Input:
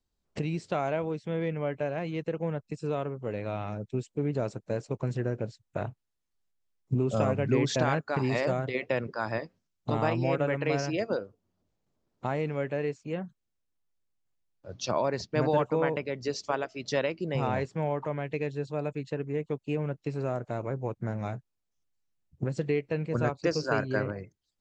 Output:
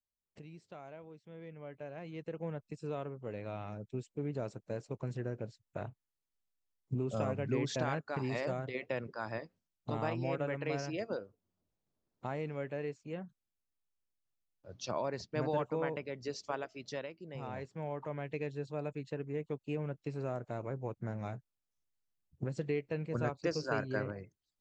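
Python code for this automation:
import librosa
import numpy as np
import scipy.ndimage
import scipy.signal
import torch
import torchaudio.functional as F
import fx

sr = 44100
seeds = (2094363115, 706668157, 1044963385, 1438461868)

y = fx.gain(x, sr, db=fx.line((1.26, -20.0), (2.46, -8.0), (16.76, -8.0), (17.16, -16.5), (18.23, -6.5)))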